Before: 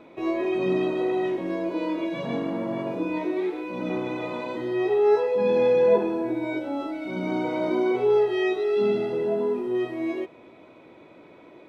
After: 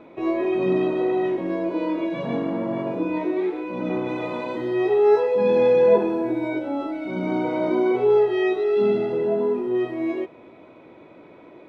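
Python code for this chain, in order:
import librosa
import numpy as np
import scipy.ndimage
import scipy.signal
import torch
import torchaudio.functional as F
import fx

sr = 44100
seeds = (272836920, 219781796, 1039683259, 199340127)

y = fx.high_shelf(x, sr, hz=4000.0, db=fx.steps((0.0, -11.0), (4.07, -4.5), (6.47, -10.0)))
y = y * 10.0 ** (3.0 / 20.0)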